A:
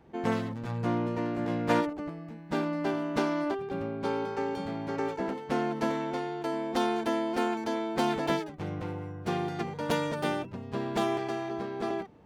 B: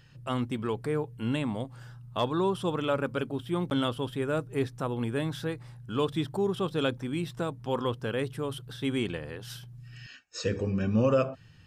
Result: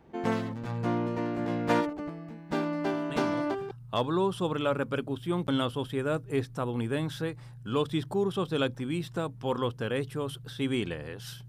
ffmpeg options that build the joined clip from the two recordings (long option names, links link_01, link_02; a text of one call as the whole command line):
ffmpeg -i cue0.wav -i cue1.wav -filter_complex "[1:a]asplit=2[link_01][link_02];[0:a]apad=whole_dur=11.48,atrim=end=11.48,atrim=end=3.712[link_03];[link_02]atrim=start=1.938:end=9.71[link_04];[link_01]atrim=start=1.33:end=1.94,asetpts=PTS-STARTPTS,volume=-7dB,afade=type=in:duration=0.004:curve=hsin,afade=type=out:start_time=0.606:duration=0.004:curve=hsin,adelay=3100[link_05];[link_03][link_04]acrossfade=duration=0.004:curve1=hsin:curve2=hsin[link_06];[link_06][link_05]amix=inputs=2:normalize=0" out.wav